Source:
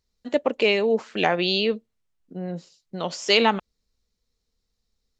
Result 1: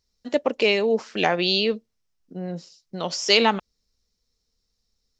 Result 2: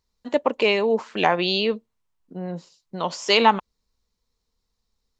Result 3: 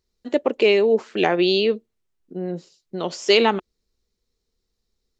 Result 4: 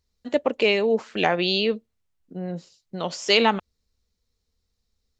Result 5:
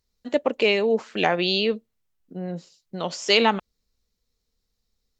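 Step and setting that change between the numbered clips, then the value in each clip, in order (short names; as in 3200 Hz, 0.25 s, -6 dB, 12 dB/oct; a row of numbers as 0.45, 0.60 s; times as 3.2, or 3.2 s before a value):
bell, frequency: 5400, 990, 370, 79, 16000 Hz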